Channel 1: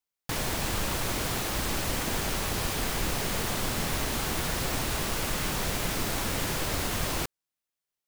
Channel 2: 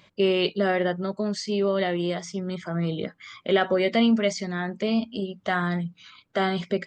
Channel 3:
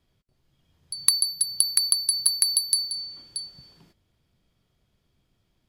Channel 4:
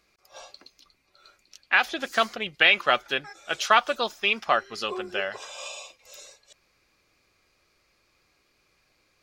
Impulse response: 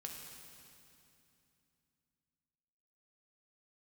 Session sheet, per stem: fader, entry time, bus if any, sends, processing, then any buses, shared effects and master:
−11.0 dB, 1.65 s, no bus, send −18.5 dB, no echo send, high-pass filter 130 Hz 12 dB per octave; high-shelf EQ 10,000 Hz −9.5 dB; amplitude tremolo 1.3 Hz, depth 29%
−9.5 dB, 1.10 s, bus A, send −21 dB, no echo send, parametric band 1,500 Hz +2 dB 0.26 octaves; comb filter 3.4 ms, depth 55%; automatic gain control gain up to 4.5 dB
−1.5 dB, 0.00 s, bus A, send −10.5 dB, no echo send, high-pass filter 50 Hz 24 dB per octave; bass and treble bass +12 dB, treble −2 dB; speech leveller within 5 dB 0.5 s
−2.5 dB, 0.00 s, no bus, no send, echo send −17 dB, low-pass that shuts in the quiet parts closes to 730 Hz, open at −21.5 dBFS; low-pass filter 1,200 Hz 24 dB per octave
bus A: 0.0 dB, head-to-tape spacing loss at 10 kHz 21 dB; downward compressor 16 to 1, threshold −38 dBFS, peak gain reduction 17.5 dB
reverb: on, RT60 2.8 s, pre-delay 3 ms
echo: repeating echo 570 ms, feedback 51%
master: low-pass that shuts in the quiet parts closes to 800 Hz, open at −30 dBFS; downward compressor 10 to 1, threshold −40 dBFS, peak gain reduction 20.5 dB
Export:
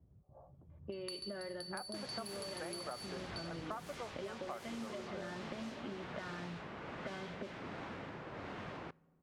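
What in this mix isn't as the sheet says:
stem 2: entry 1.10 s → 0.70 s
stem 4 −2.5 dB → −10.0 dB

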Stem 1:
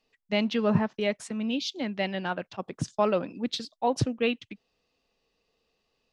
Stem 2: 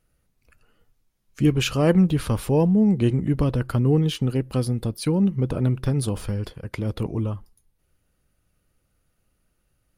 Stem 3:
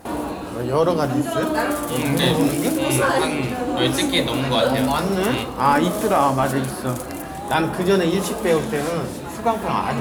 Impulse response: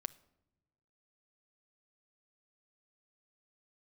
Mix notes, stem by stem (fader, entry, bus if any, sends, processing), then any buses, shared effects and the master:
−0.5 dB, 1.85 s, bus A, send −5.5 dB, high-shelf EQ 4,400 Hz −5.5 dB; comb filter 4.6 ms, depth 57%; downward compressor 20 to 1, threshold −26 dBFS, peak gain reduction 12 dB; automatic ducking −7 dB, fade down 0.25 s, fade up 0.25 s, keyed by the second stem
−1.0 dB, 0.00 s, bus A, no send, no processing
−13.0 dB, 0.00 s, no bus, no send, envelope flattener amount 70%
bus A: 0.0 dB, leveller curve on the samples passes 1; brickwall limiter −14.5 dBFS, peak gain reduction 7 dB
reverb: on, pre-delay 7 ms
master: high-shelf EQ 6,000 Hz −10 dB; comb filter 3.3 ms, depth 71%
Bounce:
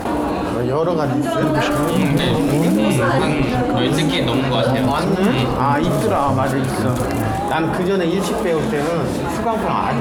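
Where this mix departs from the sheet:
stem 3 −13.0 dB → −2.0 dB
master: missing comb filter 3.3 ms, depth 71%

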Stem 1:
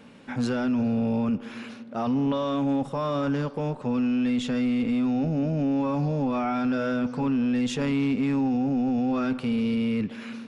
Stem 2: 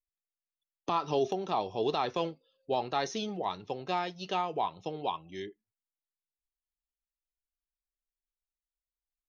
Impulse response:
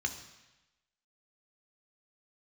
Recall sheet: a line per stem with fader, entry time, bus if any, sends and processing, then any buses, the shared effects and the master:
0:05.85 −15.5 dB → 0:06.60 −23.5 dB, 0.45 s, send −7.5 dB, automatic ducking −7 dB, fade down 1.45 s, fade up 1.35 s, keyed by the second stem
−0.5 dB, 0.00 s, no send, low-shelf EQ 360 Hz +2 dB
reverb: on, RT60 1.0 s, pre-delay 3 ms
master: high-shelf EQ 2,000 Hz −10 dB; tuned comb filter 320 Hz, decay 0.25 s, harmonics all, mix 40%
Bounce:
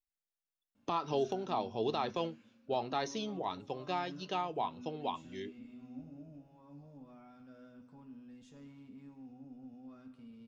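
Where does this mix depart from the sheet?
stem 1: entry 0.45 s → 0.75 s
master: missing high-shelf EQ 2,000 Hz −10 dB

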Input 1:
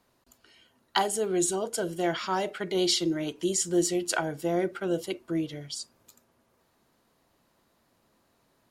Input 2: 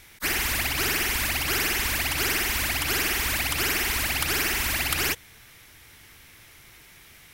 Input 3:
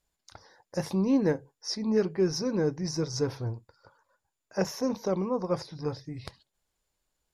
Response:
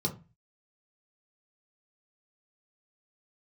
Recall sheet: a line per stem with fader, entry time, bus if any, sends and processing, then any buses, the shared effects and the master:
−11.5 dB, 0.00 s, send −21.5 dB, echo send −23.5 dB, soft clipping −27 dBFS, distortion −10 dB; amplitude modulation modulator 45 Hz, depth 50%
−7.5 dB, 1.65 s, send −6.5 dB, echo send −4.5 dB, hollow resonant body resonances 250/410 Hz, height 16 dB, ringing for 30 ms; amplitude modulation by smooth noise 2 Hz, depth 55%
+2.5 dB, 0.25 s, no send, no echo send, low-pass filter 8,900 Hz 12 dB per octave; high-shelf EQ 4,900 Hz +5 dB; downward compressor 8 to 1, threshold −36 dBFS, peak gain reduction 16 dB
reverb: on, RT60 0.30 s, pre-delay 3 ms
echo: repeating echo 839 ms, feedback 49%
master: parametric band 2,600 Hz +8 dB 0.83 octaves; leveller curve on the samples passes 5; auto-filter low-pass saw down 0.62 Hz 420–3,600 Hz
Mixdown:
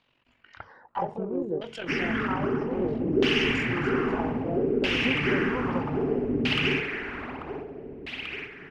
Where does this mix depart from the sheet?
stem 1 −11.5 dB → −0.5 dB
master: missing leveller curve on the samples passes 5

